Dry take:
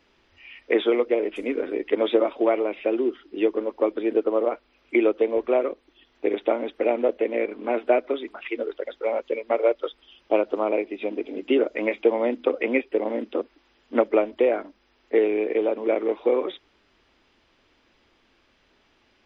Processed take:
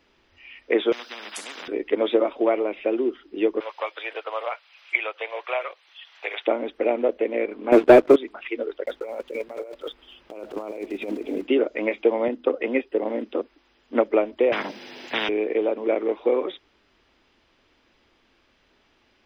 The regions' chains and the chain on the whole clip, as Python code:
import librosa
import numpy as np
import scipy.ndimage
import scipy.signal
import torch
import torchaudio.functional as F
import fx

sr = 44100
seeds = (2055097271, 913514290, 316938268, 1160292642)

y = fx.chain(x, sr, fx.highpass(hz=780.0, slope=12),
    fx.spectral_comp(ratio=10.0), at=(0.92, 1.68))
y = fx.chain(y, sr, fx.highpass(hz=710.0, slope=24),
    fx.peak_eq(hz=3000.0, db=9.0, octaves=2.2),
    fx.band_squash(depth_pct=40), at=(3.6, 6.47))
y = fx.chain(y, sr, fx.peak_eq(hz=330.0, db=9.0, octaves=1.1),
    fx.leveller(passes=2), at=(7.72, 8.16))
y = fx.chain(y, sr, fx.block_float(bits=5),
    fx.lowpass(hz=2800.0, slope=6),
    fx.over_compress(threshold_db=-32.0, ratio=-1.0), at=(8.86, 11.47))
y = fx.chain(y, sr, fx.notch(hz=2300.0, q=8.7),
    fx.band_widen(depth_pct=40), at=(12.28, 13.03))
y = fx.chain(y, sr, fx.highpass(hz=140.0, slope=24),
    fx.peak_eq(hz=1200.0, db=-9.5, octaves=0.53),
    fx.spectral_comp(ratio=10.0), at=(14.52, 15.29))